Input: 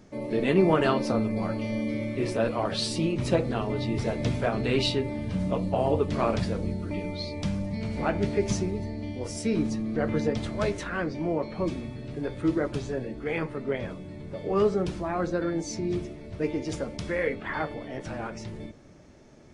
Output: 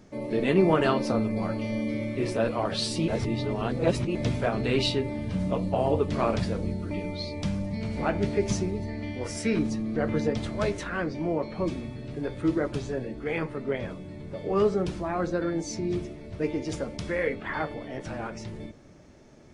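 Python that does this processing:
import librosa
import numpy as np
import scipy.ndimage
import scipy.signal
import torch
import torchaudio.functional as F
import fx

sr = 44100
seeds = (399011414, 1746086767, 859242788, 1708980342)

y = fx.peak_eq(x, sr, hz=1700.0, db=9.5, octaves=1.2, at=(8.88, 9.59))
y = fx.edit(y, sr, fx.reverse_span(start_s=3.08, length_s=1.07), tone=tone)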